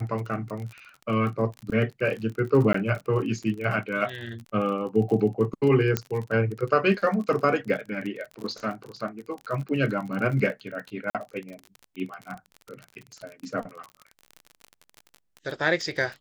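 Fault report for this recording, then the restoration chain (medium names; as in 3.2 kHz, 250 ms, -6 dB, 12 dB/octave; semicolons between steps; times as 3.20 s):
crackle 37 per s -32 dBFS
2.73–2.74 s: dropout 14 ms
5.97 s: pop -8 dBFS
11.10–11.15 s: dropout 47 ms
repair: de-click; interpolate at 2.73 s, 14 ms; interpolate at 11.10 s, 47 ms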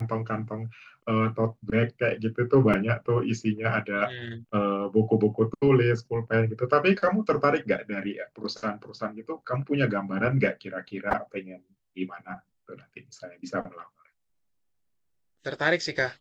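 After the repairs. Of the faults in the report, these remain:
nothing left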